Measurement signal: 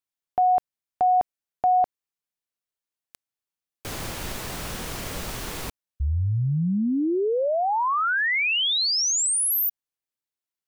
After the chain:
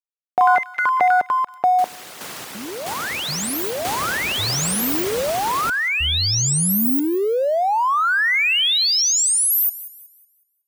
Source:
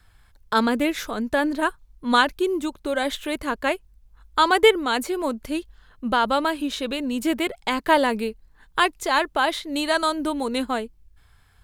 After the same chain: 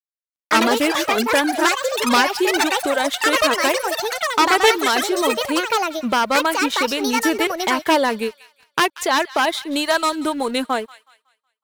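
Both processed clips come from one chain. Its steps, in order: one-sided wavefolder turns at -15.5 dBFS; high-pass 61 Hz 12 dB/octave; reverb removal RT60 0.5 s; bass shelf 140 Hz -11 dB; in parallel at +1.5 dB: compression 20:1, threshold -30 dBFS; on the sum: bit crusher 11-bit; crossover distortion -43.5 dBFS; ever faster or slower copies 142 ms, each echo +6 st, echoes 3; on a send: feedback echo behind a high-pass 185 ms, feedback 34%, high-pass 1.5 kHz, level -16 dB; on the sum: trim +2.5 dB

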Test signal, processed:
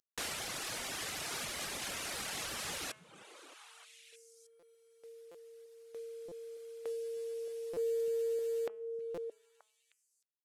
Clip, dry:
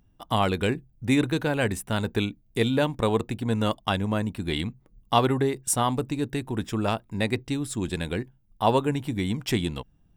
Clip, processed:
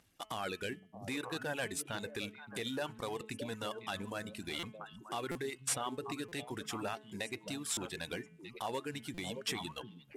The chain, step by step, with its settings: CVSD coder 64 kbps; compression 1.5:1, threshold -42 dBFS; peaking EQ 990 Hz -3.5 dB 0.42 oct; repeats whose band climbs or falls 310 ms, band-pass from 160 Hz, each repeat 1.4 oct, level -5 dB; reverb removal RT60 0.84 s; high-pass 110 Hz 6 dB/octave; peak limiter -27.5 dBFS; bass shelf 460 Hz -12 dB; de-hum 215.5 Hz, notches 15; buffer glitch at 4.59/5.31/6.28/7.73/9.14 s, samples 256, times 6; trim +4 dB

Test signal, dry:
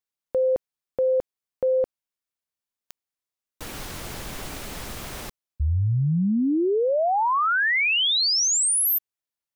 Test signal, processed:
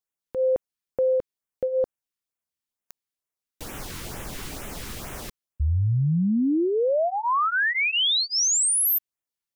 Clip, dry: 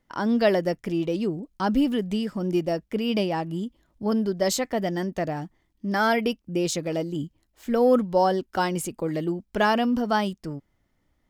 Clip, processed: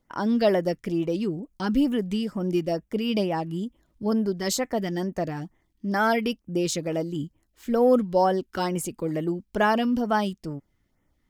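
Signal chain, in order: LFO notch sine 2.2 Hz 590–4700 Hz

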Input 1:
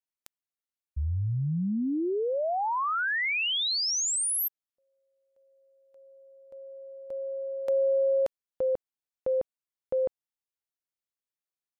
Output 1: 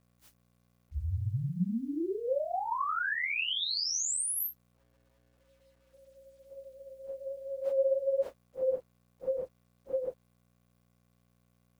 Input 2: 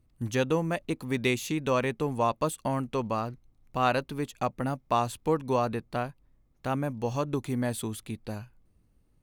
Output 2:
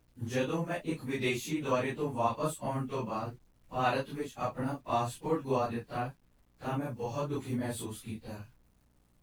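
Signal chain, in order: phase randomisation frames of 100 ms; mains buzz 60 Hz, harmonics 5, -66 dBFS -5 dB/octave; bit crusher 11-bit; trim -4.5 dB

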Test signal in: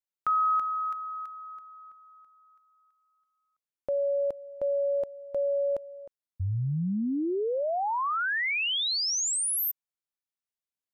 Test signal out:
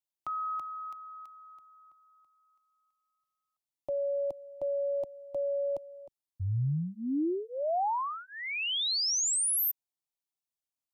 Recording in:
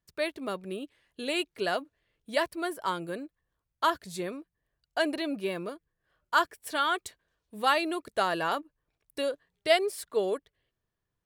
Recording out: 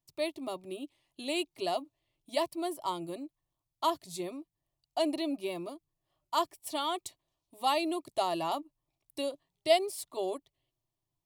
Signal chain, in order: static phaser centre 310 Hz, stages 8

